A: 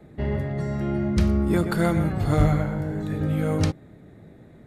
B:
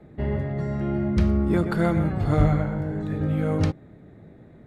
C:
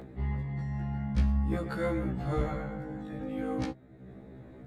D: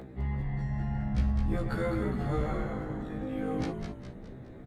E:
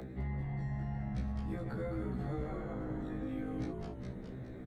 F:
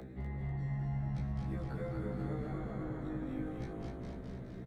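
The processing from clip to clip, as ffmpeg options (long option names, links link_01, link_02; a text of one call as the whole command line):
ffmpeg -i in.wav -af "lowpass=frequency=2700:poles=1" out.wav
ffmpeg -i in.wav -af "acompressor=mode=upward:threshold=-31dB:ratio=2.5,afftfilt=real='re*1.73*eq(mod(b,3),0)':imag='im*1.73*eq(mod(b,3),0)':win_size=2048:overlap=0.75,volume=-5dB" out.wav
ffmpeg -i in.wav -filter_complex "[0:a]asplit=2[link_01][link_02];[link_02]alimiter=level_in=2.5dB:limit=-24dB:level=0:latency=1,volume=-2.5dB,volume=-1.5dB[link_03];[link_01][link_03]amix=inputs=2:normalize=0,asplit=7[link_04][link_05][link_06][link_07][link_08][link_09][link_10];[link_05]adelay=207,afreqshift=-97,volume=-5.5dB[link_11];[link_06]adelay=414,afreqshift=-194,volume=-11.9dB[link_12];[link_07]adelay=621,afreqshift=-291,volume=-18.3dB[link_13];[link_08]adelay=828,afreqshift=-388,volume=-24.6dB[link_14];[link_09]adelay=1035,afreqshift=-485,volume=-31dB[link_15];[link_10]adelay=1242,afreqshift=-582,volume=-37.4dB[link_16];[link_04][link_11][link_12][link_13][link_14][link_15][link_16]amix=inputs=7:normalize=0,volume=-4.5dB" out.wav
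ffmpeg -i in.wav -filter_complex "[0:a]acrossover=split=130|1100[link_01][link_02][link_03];[link_01]acompressor=threshold=-43dB:ratio=4[link_04];[link_02]acompressor=threshold=-38dB:ratio=4[link_05];[link_03]acompressor=threshold=-58dB:ratio=4[link_06];[link_04][link_05][link_06]amix=inputs=3:normalize=0,asplit=2[link_07][link_08];[link_08]adelay=16,volume=-6.5dB[link_09];[link_07][link_09]amix=inputs=2:normalize=0,volume=-1dB" out.wav
ffmpeg -i in.wav -af "aecho=1:1:246|492|738|984|1230|1476|1722:0.668|0.341|0.174|0.0887|0.0452|0.0231|0.0118,volume=-3dB" out.wav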